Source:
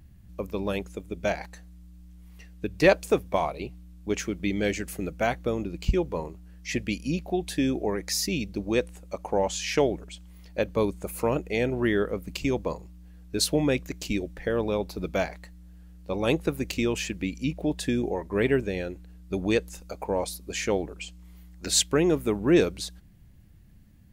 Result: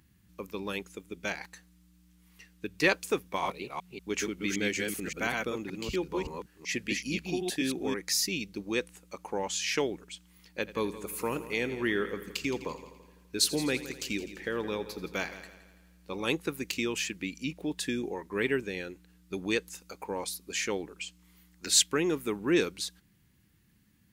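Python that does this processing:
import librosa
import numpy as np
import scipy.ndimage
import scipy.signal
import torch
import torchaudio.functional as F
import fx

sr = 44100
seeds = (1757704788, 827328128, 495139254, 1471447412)

y = fx.reverse_delay(x, sr, ms=190, wet_db=-2, at=(3.23, 7.94))
y = fx.echo_heads(y, sr, ms=84, heads='first and second', feedback_pct=49, wet_db=-16.5, at=(10.66, 16.24), fade=0.02)
y = fx.highpass(y, sr, hz=430.0, slope=6)
y = fx.peak_eq(y, sr, hz=640.0, db=-13.0, octaves=0.62)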